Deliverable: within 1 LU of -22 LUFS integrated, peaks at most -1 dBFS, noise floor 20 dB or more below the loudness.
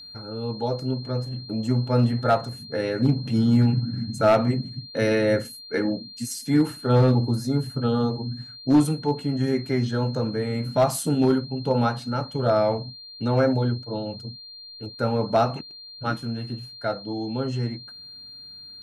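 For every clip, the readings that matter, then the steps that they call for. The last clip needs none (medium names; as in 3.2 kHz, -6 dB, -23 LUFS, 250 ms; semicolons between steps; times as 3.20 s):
clipped samples 0.2%; clipping level -11.0 dBFS; steady tone 4.2 kHz; tone level -40 dBFS; loudness -24.5 LUFS; peak level -11.0 dBFS; loudness target -22.0 LUFS
-> clip repair -11 dBFS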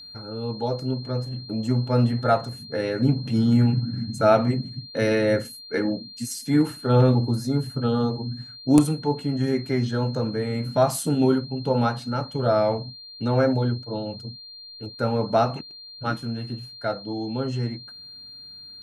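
clipped samples 0.0%; steady tone 4.2 kHz; tone level -40 dBFS
-> band-stop 4.2 kHz, Q 30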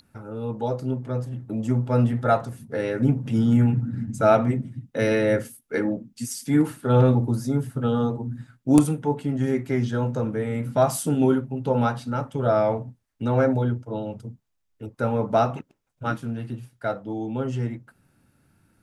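steady tone not found; loudness -24.0 LUFS; peak level -2.0 dBFS; loudness target -22.0 LUFS
-> trim +2 dB; peak limiter -1 dBFS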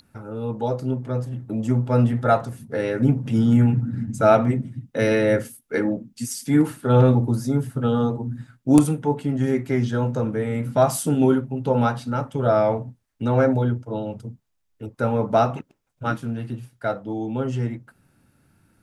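loudness -22.0 LUFS; peak level -1.0 dBFS; noise floor -69 dBFS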